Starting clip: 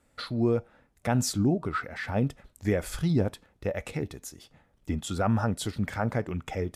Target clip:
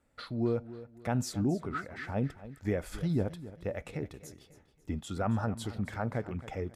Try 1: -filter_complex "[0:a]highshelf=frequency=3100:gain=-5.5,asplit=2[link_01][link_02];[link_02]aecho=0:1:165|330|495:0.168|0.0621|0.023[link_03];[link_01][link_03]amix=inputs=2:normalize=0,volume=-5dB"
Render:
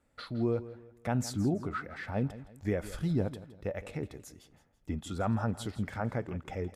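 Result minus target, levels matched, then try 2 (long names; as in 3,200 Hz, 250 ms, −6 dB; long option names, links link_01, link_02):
echo 107 ms early
-filter_complex "[0:a]highshelf=frequency=3100:gain=-5.5,asplit=2[link_01][link_02];[link_02]aecho=0:1:272|544|816:0.168|0.0621|0.023[link_03];[link_01][link_03]amix=inputs=2:normalize=0,volume=-5dB"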